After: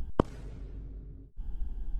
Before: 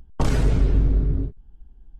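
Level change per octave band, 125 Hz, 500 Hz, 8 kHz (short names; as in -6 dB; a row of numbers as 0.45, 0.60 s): -17.0 dB, -5.5 dB, n/a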